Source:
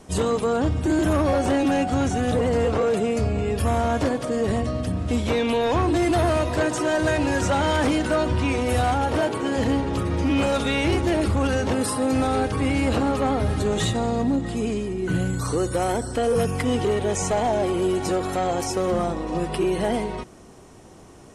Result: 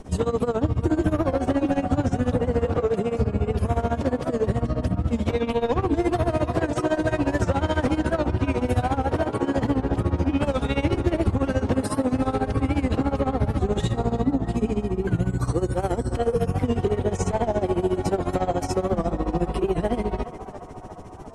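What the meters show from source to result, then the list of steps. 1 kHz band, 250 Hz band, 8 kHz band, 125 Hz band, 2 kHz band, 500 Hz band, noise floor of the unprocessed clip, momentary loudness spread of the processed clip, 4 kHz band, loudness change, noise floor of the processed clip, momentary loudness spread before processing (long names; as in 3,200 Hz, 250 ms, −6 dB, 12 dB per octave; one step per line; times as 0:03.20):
−3.0 dB, −1.0 dB, −9.0 dB, +1.0 dB, −5.5 dB, −1.5 dB, −46 dBFS, 2 LU, −7.5 dB, −1.5 dB, −36 dBFS, 4 LU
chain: spectral tilt −2 dB per octave
hum removal 76.9 Hz, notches 3
downward compressor 2.5 to 1, threshold −24 dBFS, peak gain reduction 7.5 dB
amplitude tremolo 14 Hz, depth 86%
on a send: feedback echo with a band-pass in the loop 351 ms, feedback 74%, band-pass 1,000 Hz, level −9 dB
on the sum: wow of a warped record 78 rpm, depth 100 cents
level +5 dB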